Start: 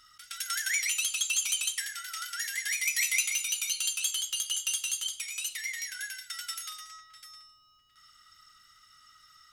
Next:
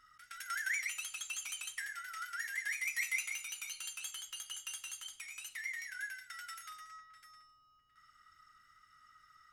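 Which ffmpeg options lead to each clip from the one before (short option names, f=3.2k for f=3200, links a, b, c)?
-af "highshelf=f=2.5k:t=q:w=1.5:g=-9,volume=-4dB"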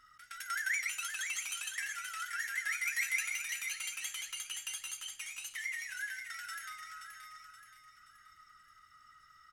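-af "aecho=1:1:526|1052|1578|2104|2630:0.422|0.186|0.0816|0.0359|0.0158,volume=2dB"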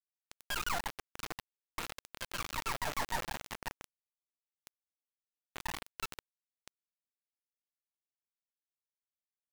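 -af "lowpass=f=2.6k:t=q:w=0.5098,lowpass=f=2.6k:t=q:w=0.6013,lowpass=f=2.6k:t=q:w=0.9,lowpass=f=2.6k:t=q:w=2.563,afreqshift=-3000,acrusher=bits=3:dc=4:mix=0:aa=0.000001,volume=2dB"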